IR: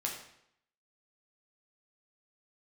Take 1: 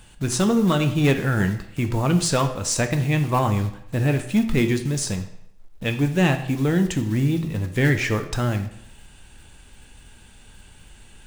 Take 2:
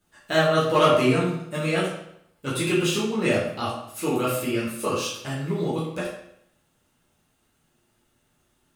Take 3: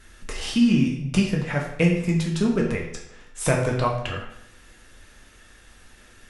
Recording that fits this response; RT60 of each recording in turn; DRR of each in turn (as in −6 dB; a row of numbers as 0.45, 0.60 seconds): 3; 0.75, 0.75, 0.75 seconds; 6.5, −8.5, −1.5 decibels